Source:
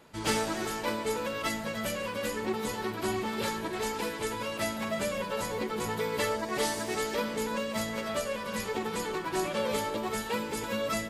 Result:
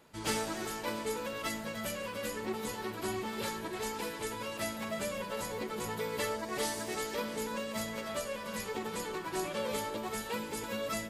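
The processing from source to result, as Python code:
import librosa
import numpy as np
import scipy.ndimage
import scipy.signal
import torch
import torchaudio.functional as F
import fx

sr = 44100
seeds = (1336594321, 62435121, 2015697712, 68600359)

y = fx.high_shelf(x, sr, hz=7500.0, db=4.5)
y = y + 10.0 ** (-18.0 / 20.0) * np.pad(y, (int(687 * sr / 1000.0), 0))[:len(y)]
y = y * 10.0 ** (-5.0 / 20.0)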